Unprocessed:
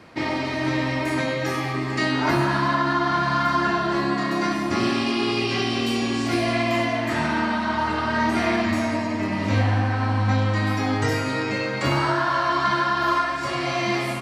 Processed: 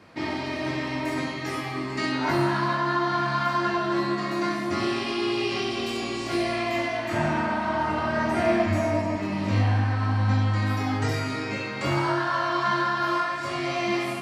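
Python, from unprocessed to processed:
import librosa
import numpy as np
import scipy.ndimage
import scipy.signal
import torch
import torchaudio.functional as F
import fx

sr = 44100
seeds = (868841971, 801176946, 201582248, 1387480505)

y = fx.graphic_eq_15(x, sr, hz=(100, 250, 630, 4000), db=(9, 4, 6, -5), at=(7.13, 9.16))
y = fx.room_early_taps(y, sr, ms=(20, 66), db=(-4.5, -8.0))
y = y * 10.0 ** (-5.5 / 20.0)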